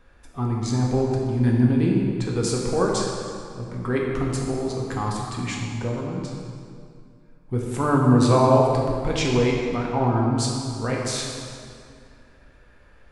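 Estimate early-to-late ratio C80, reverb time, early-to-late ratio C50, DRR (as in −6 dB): 2.0 dB, 2.3 s, 0.5 dB, −2.5 dB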